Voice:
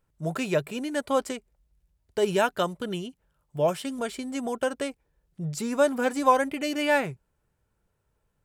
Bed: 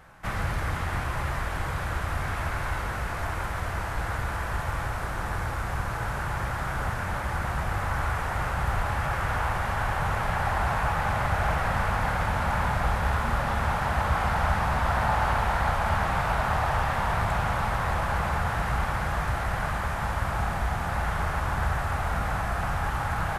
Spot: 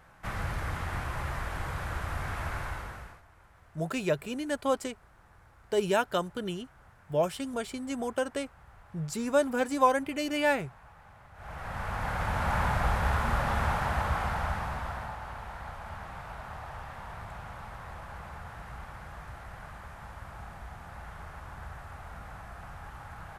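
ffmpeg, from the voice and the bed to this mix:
-filter_complex "[0:a]adelay=3550,volume=-3dB[a];[1:a]volume=21dB,afade=t=out:st=2.56:d=0.66:silence=0.0707946,afade=t=in:st=11.34:d=1.23:silence=0.0501187,afade=t=out:st=13.62:d=1.56:silence=0.188365[b];[a][b]amix=inputs=2:normalize=0"

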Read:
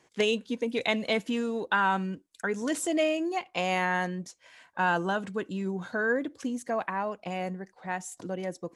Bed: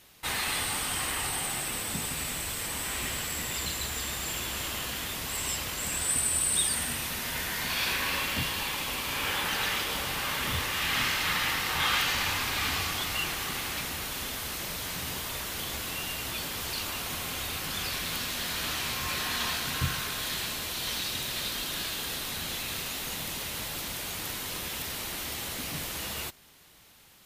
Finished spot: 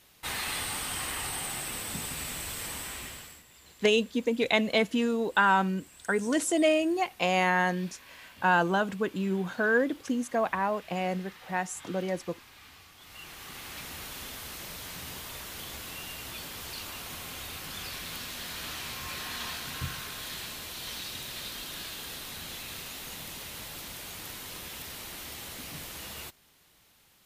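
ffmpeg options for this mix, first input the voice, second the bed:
-filter_complex "[0:a]adelay=3650,volume=2.5dB[a];[1:a]volume=14dB,afade=t=out:st=2.68:d=0.75:silence=0.1,afade=t=in:st=12.97:d=1.03:silence=0.141254[b];[a][b]amix=inputs=2:normalize=0"

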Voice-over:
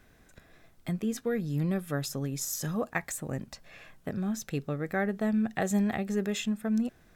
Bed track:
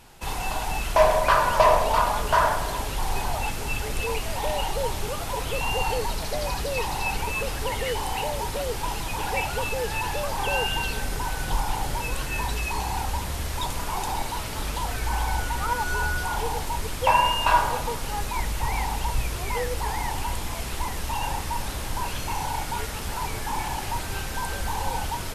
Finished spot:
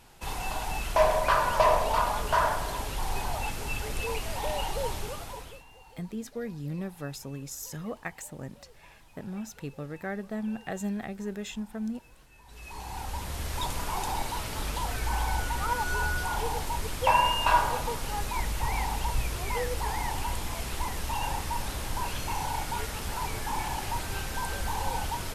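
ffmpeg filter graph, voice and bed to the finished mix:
-filter_complex "[0:a]adelay=5100,volume=-5.5dB[a];[1:a]volume=20.5dB,afade=t=out:st=4.92:d=0.72:silence=0.0668344,afade=t=in:st=12.45:d=1.15:silence=0.0562341[b];[a][b]amix=inputs=2:normalize=0"

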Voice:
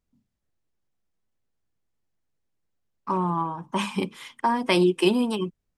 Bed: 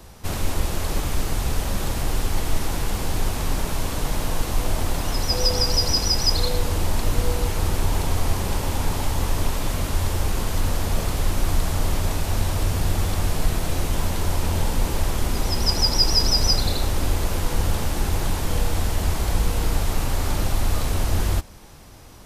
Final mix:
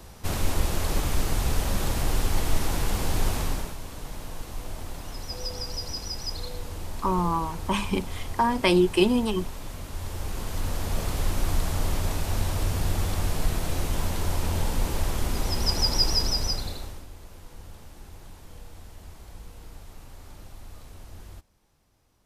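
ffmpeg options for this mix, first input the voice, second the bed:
-filter_complex "[0:a]adelay=3950,volume=0dB[a];[1:a]volume=7.5dB,afade=t=out:st=3.35:d=0.41:silence=0.266073,afade=t=in:st=9.88:d=1.31:silence=0.354813,afade=t=out:st=16.02:d=1.04:silence=0.11885[b];[a][b]amix=inputs=2:normalize=0"

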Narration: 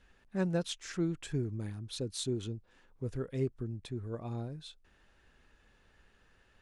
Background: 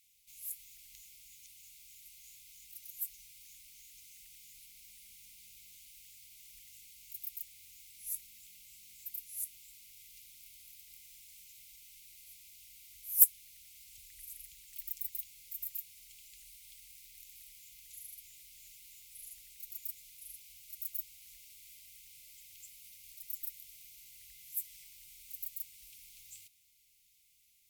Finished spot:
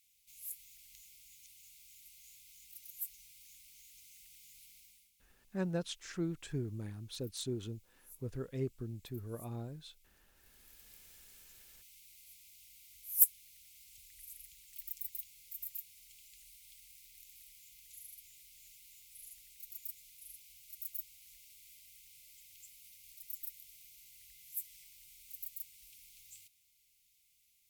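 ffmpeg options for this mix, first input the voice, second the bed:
-filter_complex "[0:a]adelay=5200,volume=-4dB[a];[1:a]volume=11.5dB,afade=t=out:st=4.73:d=0.39:silence=0.188365,afade=t=in:st=10.33:d=0.56:silence=0.199526[b];[a][b]amix=inputs=2:normalize=0"

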